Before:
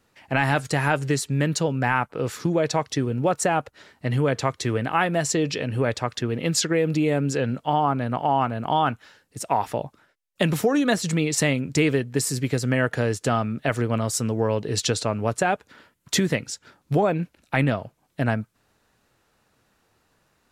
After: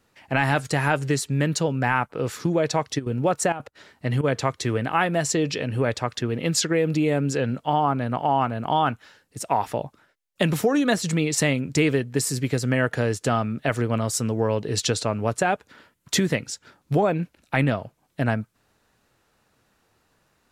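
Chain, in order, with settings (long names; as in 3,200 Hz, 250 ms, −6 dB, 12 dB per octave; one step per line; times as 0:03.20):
0:02.98–0:04.23: gate pattern "x.x.xxxxx" 196 BPM −12 dB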